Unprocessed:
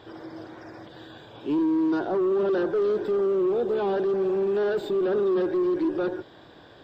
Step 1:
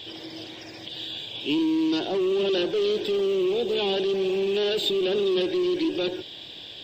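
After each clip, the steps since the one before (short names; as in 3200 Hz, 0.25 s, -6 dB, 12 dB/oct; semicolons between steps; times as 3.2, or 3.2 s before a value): resonant high shelf 2000 Hz +13 dB, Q 3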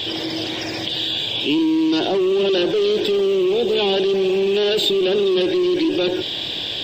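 fast leveller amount 50%; gain +5.5 dB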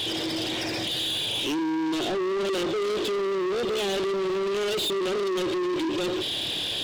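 soft clip -25 dBFS, distortion -8 dB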